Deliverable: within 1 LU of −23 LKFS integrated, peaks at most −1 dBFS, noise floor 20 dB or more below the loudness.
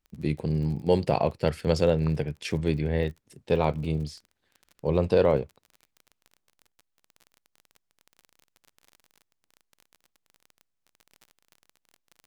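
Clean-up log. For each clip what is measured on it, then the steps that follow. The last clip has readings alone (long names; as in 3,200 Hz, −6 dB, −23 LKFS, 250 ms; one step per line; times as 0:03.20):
crackle rate 30 per second; integrated loudness −26.5 LKFS; sample peak −9.0 dBFS; target loudness −23.0 LKFS
→ click removal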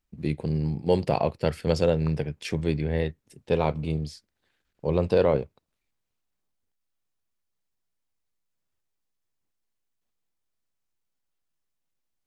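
crackle rate 0 per second; integrated loudness −26.5 LKFS; sample peak −9.0 dBFS; target loudness −23.0 LKFS
→ level +3.5 dB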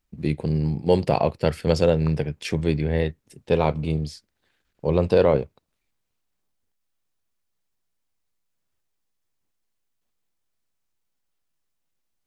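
integrated loudness −23.0 LKFS; sample peak −5.5 dBFS; background noise floor −76 dBFS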